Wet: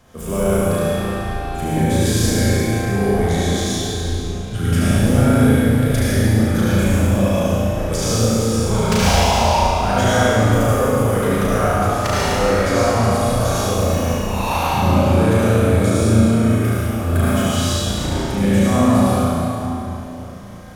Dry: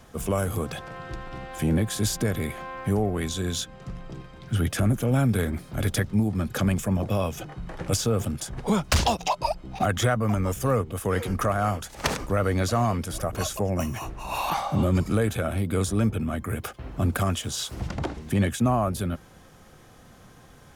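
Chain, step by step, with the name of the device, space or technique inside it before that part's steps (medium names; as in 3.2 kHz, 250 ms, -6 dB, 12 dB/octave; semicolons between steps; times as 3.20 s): tunnel (flutter echo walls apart 6.1 m, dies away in 0.72 s; reverberation RT60 3.4 s, pre-delay 67 ms, DRR -8.5 dB); trim -2.5 dB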